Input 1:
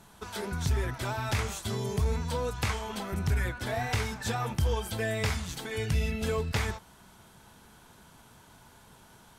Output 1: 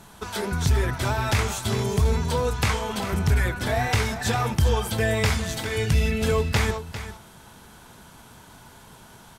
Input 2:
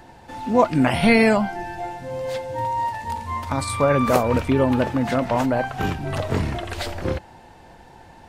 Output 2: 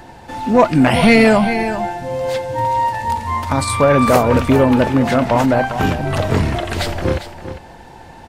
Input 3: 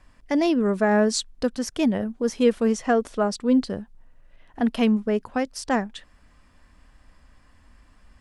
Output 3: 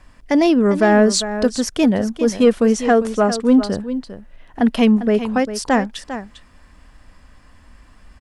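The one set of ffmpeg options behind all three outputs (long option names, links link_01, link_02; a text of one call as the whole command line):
ffmpeg -i in.wav -af "aecho=1:1:400:0.251,acontrast=86" out.wav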